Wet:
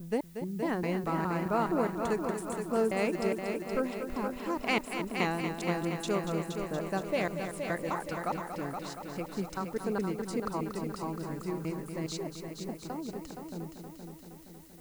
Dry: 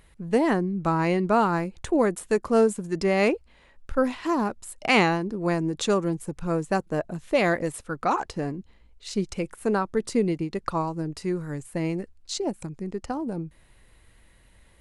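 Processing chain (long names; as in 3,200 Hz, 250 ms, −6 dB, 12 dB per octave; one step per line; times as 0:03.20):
slices reordered back to front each 208 ms, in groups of 2
background noise blue −52 dBFS
echo machine with several playback heads 235 ms, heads first and second, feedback 63%, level −9 dB
level −9 dB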